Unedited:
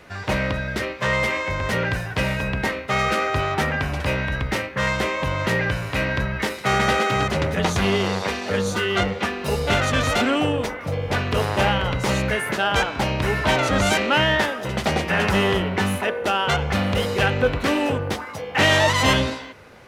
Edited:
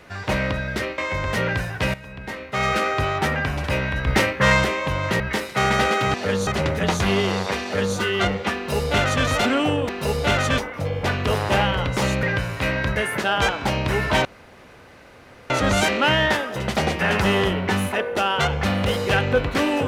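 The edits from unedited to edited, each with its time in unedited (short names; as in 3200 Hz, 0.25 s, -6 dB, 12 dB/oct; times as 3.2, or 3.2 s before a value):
0.98–1.34 cut
2.3–3.02 fade in quadratic, from -15.5 dB
4.43–5 gain +6 dB
5.56–6.29 move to 12.3
8.39–8.72 copy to 7.23
9.32–10.01 copy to 10.65
13.59 insert room tone 1.25 s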